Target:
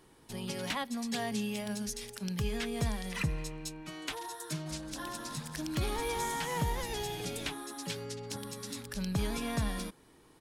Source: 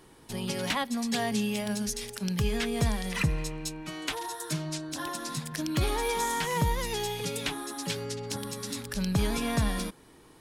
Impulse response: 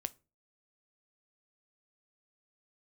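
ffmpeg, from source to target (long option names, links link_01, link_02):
-filter_complex "[0:a]asplit=3[link_01][link_02][link_03];[link_01]afade=type=out:start_time=4.65:duration=0.02[link_04];[link_02]asplit=7[link_05][link_06][link_07][link_08][link_09][link_10][link_11];[link_06]adelay=187,afreqshift=-97,volume=-11dB[link_12];[link_07]adelay=374,afreqshift=-194,volume=-16.7dB[link_13];[link_08]adelay=561,afreqshift=-291,volume=-22.4dB[link_14];[link_09]adelay=748,afreqshift=-388,volume=-28dB[link_15];[link_10]adelay=935,afreqshift=-485,volume=-33.7dB[link_16];[link_11]adelay=1122,afreqshift=-582,volume=-39.4dB[link_17];[link_05][link_12][link_13][link_14][link_15][link_16][link_17]amix=inputs=7:normalize=0,afade=type=in:start_time=4.65:duration=0.02,afade=type=out:start_time=7.48:duration=0.02[link_18];[link_03]afade=type=in:start_time=7.48:duration=0.02[link_19];[link_04][link_18][link_19]amix=inputs=3:normalize=0,volume=-5.5dB"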